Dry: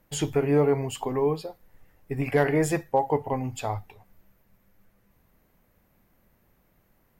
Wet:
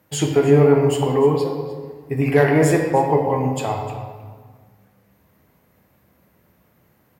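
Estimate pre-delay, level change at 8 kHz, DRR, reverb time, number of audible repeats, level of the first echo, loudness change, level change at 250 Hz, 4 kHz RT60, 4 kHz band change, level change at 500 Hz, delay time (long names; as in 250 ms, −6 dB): 6 ms, +6.0 dB, 1.5 dB, 1.6 s, 1, −17.0 dB, +8.5 dB, +8.5 dB, 1.1 s, +7.0 dB, +8.5 dB, 303 ms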